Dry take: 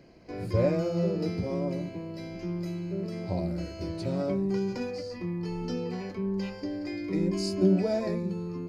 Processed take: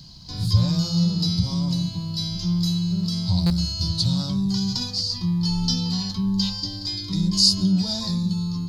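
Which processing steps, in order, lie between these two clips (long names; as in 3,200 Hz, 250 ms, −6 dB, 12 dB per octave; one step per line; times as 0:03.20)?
in parallel at +2 dB: brickwall limiter −22.5 dBFS, peak gain reduction 10.5 dB
on the sum: drawn EQ curve 160 Hz 0 dB, 400 Hz −28 dB, 610 Hz −25 dB, 930 Hz −7 dB, 2,300 Hz −21 dB, 3,600 Hz +13 dB, 8,700 Hz +3 dB
speech leveller within 4 dB 2 s
buffer that repeats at 0:03.46, samples 256, times 6
level +5.5 dB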